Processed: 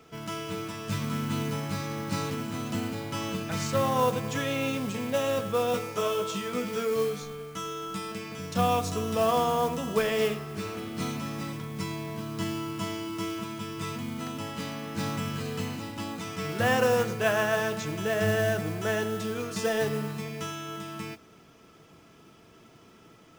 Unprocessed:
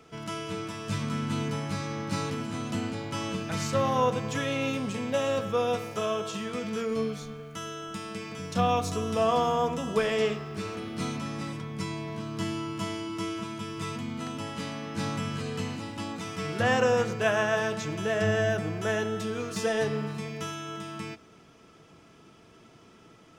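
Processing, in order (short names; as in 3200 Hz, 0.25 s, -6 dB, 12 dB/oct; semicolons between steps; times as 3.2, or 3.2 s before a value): modulation noise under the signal 19 dB; 5.72–8.12 doubler 16 ms -3 dB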